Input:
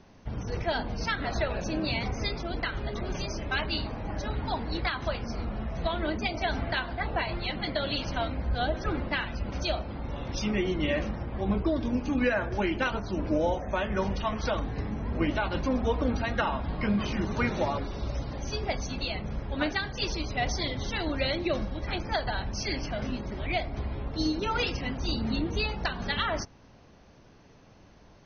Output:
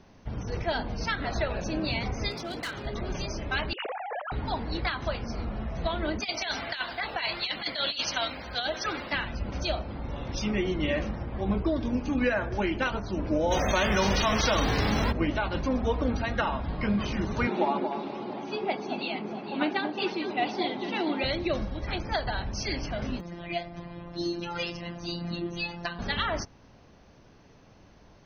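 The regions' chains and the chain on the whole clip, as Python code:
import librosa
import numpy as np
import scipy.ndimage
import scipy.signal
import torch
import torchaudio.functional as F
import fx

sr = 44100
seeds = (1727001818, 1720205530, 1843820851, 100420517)

y = fx.chain(x, sr, fx.highpass(hz=130.0, slope=12),
    fx.high_shelf(hz=4900.0, db=11.0),
    fx.clip_hard(threshold_db=-30.5), at=(2.31, 2.86))
y = fx.chain(y, sr, fx.sine_speech(),
    fx.lowpass(hz=2800.0, slope=12),
    fx.over_compress(threshold_db=-34.0, ratio=-0.5), at=(3.73, 4.32))
y = fx.chain(y, sr, fx.tilt_eq(slope=4.5),
    fx.over_compress(threshold_db=-29.0, ratio=-0.5), at=(6.2, 9.13))
y = fx.envelope_flatten(y, sr, power=0.6, at=(13.5, 15.11), fade=0.02)
y = fx.env_flatten(y, sr, amount_pct=70, at=(13.5, 15.11), fade=0.02)
y = fx.chain(y, sr, fx.cabinet(low_hz=200.0, low_slope=24, high_hz=3900.0, hz=(200.0, 370.0, 530.0, 830.0, 1800.0, 2600.0), db=(5, 9, -5, 7, -4, 3)),
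    fx.echo_alternate(ms=227, hz=1100.0, feedback_pct=56, wet_db=-6), at=(17.47, 21.24))
y = fx.chain(y, sr, fx.robotise(hz=172.0),
    fx.notch_comb(f0_hz=450.0), at=(23.2, 25.99))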